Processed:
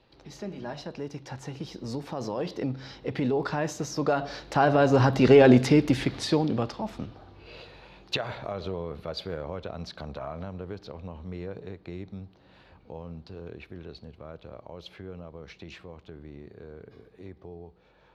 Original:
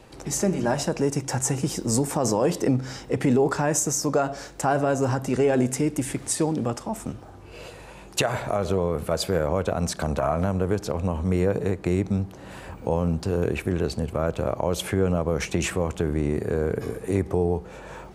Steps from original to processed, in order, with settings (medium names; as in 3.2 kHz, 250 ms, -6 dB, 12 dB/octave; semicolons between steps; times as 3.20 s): Doppler pass-by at 5.44 s, 6 m/s, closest 3.4 m; resonant high shelf 5.9 kHz -13.5 dB, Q 3; trim +5.5 dB